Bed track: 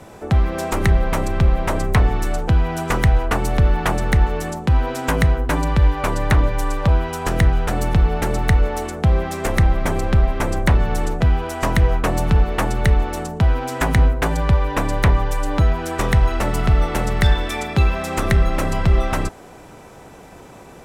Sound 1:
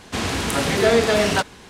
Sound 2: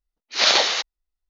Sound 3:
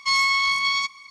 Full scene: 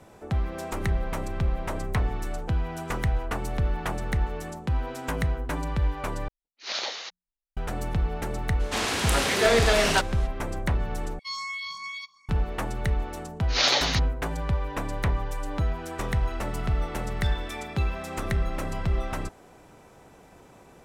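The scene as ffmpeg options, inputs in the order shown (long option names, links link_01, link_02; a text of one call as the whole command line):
ffmpeg -i bed.wav -i cue0.wav -i cue1.wav -i cue2.wav -filter_complex "[2:a]asplit=2[link_01][link_02];[0:a]volume=-10.5dB[link_03];[link_01]bandreject=frequency=60:width_type=h:width=6,bandreject=frequency=120:width_type=h:width=6,bandreject=frequency=180:width_type=h:width=6,bandreject=frequency=240:width_type=h:width=6[link_04];[1:a]lowshelf=frequency=330:gain=-12[link_05];[3:a]asplit=2[link_06][link_07];[link_07]afreqshift=2.6[link_08];[link_06][link_08]amix=inputs=2:normalize=1[link_09];[link_02]aecho=1:1:7:0.44[link_10];[link_03]asplit=3[link_11][link_12][link_13];[link_11]atrim=end=6.284[link_14];[link_04]atrim=end=1.29,asetpts=PTS-STARTPTS,volume=-14.5dB[link_15];[link_12]atrim=start=7.566:end=11.194[link_16];[link_09]atrim=end=1.1,asetpts=PTS-STARTPTS,volume=-11dB[link_17];[link_13]atrim=start=12.286[link_18];[link_05]atrim=end=1.69,asetpts=PTS-STARTPTS,volume=-1dB,afade=type=in:duration=0.02,afade=type=out:start_time=1.67:duration=0.02,adelay=8590[link_19];[link_10]atrim=end=1.29,asetpts=PTS-STARTPTS,volume=-6dB,afade=type=in:duration=0.004:curve=hsin,afade=type=out:start_time=1.286:duration=0.004:curve=hsin,adelay=13170[link_20];[link_14][link_15]acrossfade=duration=0.004:curve1=hsin:curve2=hsin[link_21];[link_21][link_16]acrossfade=duration=0.004:curve1=hsin:curve2=hsin[link_22];[link_22][link_17]acrossfade=duration=0.004:curve1=hsin:curve2=hsin[link_23];[link_23][link_18]acrossfade=duration=0.004:curve1=hsin:curve2=hsin[link_24];[link_24][link_19][link_20]amix=inputs=3:normalize=0" out.wav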